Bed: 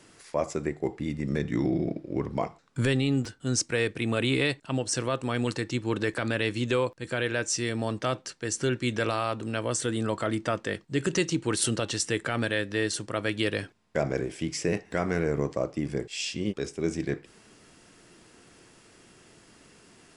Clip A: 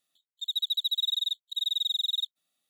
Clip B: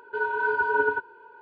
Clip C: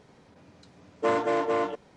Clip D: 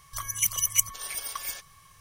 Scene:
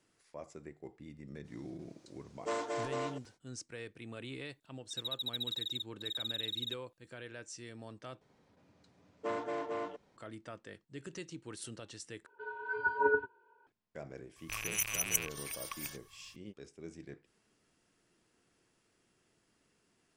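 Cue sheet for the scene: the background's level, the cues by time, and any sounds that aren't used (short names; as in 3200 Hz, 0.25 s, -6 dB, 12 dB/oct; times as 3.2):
bed -19 dB
1.43 add C -11 dB, fades 0.05 s + tone controls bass -7 dB, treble +14 dB
4.49 add A -10 dB
8.21 replace with C -12 dB
12.26 replace with B -3.5 dB + spectral noise reduction 13 dB
14.36 add D -9 dB + rattling part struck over -51 dBFS, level -18 dBFS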